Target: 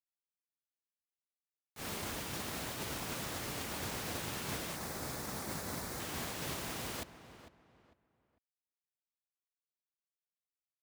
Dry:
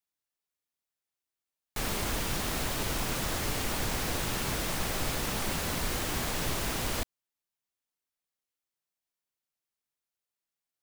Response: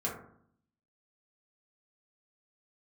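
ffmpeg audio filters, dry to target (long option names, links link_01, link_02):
-filter_complex "[0:a]highpass=85,agate=range=-33dB:threshold=-19dB:ratio=3:detection=peak,asettb=1/sr,asplit=3[link_01][link_02][link_03];[link_01]atrim=end=4.764[link_04];[link_02]atrim=start=4.76:end=6,asetpts=PTS-STARTPTS,afade=type=in:duration=0.004:curve=qsin,afade=type=out:start_time=1.236:duration=0.004:curve=qsin,equalizer=frequency=2900:width_type=o:width=0.64:gain=-9.5[link_05];[link_03]atrim=start=5.996[link_06];[link_04][link_05]acrossfade=duration=0.004:curve1=hsin:curve2=qsin[link_07];[link_07][link_06]acrossfade=duration=0.004:curve1=qsin:curve2=hsin,asplit=2[link_08][link_09];[link_09]adelay=450,lowpass=frequency=2500:poles=1,volume=-12.5dB,asplit=2[link_10][link_11];[link_11]adelay=450,lowpass=frequency=2500:poles=1,volume=0.3,asplit=2[link_12][link_13];[link_13]adelay=450,lowpass=frequency=2500:poles=1,volume=0.3[link_14];[link_08][link_10][link_12][link_14]amix=inputs=4:normalize=0,volume=13.5dB"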